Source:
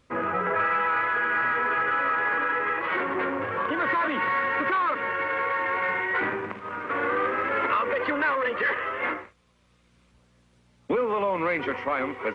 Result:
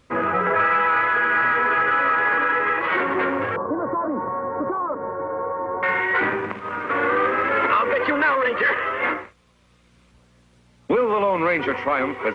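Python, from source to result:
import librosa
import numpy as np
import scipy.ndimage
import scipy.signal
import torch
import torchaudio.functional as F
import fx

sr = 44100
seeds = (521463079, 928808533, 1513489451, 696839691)

y = fx.cheby2_lowpass(x, sr, hz=3200.0, order=4, stop_db=60, at=(3.56, 5.83))
y = F.gain(torch.from_numpy(y), 5.5).numpy()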